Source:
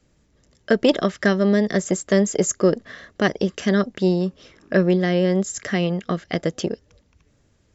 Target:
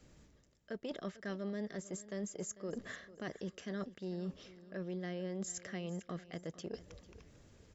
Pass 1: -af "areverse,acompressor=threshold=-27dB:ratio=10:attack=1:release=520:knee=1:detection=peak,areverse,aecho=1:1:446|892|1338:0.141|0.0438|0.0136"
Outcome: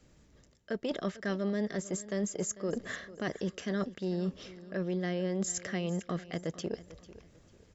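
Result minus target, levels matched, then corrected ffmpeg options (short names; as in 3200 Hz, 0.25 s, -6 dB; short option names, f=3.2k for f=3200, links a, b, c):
compressor: peak gain reduction -8 dB
-af "areverse,acompressor=threshold=-36dB:ratio=10:attack=1:release=520:knee=1:detection=peak,areverse,aecho=1:1:446|892|1338:0.141|0.0438|0.0136"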